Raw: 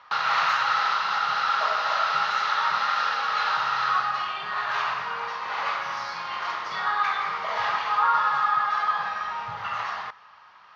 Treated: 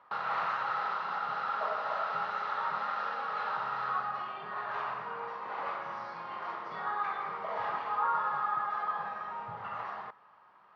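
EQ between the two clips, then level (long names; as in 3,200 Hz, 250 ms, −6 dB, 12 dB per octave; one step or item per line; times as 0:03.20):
resonant band-pass 310 Hz, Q 0.74
0.0 dB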